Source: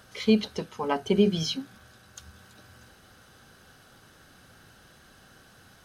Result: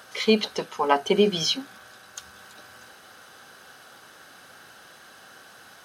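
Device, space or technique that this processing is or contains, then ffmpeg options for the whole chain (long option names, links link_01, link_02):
filter by subtraction: -filter_complex "[0:a]asplit=2[link_01][link_02];[link_02]lowpass=820,volume=-1[link_03];[link_01][link_03]amix=inputs=2:normalize=0,volume=6.5dB"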